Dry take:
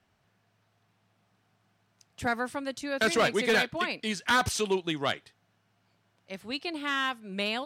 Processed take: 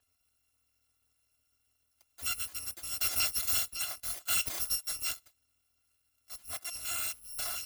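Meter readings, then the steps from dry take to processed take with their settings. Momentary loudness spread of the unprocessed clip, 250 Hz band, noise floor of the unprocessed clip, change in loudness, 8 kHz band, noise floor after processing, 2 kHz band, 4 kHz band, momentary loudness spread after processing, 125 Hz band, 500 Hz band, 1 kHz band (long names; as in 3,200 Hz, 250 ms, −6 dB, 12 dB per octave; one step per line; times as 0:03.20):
10 LU, −26.5 dB, −72 dBFS, −3.0 dB, +6.0 dB, −77 dBFS, −13.0 dB, −4.0 dB, 10 LU, −12.5 dB, −25.0 dB, −15.5 dB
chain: samples in bit-reversed order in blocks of 256 samples
level −5.5 dB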